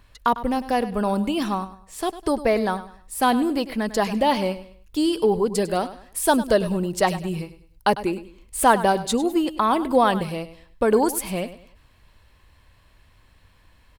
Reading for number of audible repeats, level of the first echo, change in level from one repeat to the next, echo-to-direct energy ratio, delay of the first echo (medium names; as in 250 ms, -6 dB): 3, -14.5 dB, -10.0 dB, -14.0 dB, 101 ms